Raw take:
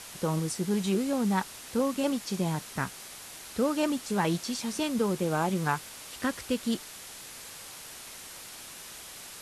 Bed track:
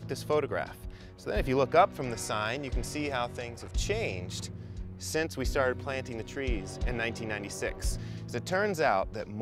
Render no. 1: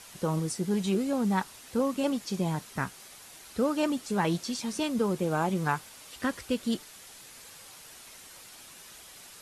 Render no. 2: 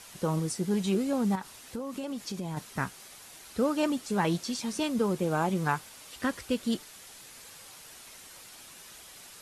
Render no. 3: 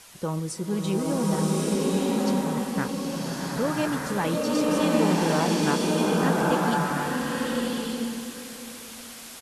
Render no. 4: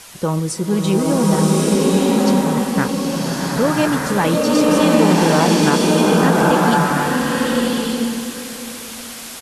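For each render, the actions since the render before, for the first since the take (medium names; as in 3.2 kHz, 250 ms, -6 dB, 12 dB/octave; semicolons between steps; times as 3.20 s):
noise reduction 6 dB, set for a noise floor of -45 dBFS
1.35–2.57 s: compression 12:1, threshold -31 dBFS
delay 1046 ms -18 dB; swelling reverb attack 1190 ms, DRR -6 dB
trim +9.5 dB; peak limiter -3 dBFS, peak gain reduction 3 dB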